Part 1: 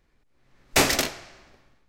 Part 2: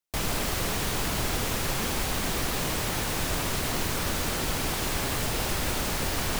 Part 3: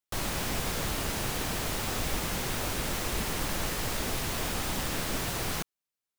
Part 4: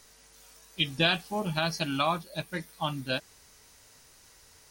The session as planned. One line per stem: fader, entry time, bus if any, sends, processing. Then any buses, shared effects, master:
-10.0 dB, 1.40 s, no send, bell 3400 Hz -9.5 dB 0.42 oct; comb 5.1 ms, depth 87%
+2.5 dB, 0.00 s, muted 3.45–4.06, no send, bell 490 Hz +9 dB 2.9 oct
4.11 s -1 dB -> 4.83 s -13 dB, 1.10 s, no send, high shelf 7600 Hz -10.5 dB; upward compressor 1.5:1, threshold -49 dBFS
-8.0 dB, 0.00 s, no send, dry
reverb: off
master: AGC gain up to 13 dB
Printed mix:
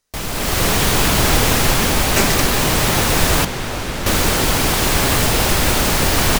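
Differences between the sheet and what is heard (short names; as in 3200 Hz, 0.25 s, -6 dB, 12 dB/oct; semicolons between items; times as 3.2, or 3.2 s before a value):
stem 2: missing bell 490 Hz +9 dB 2.9 oct; stem 4 -8.0 dB -> -16.5 dB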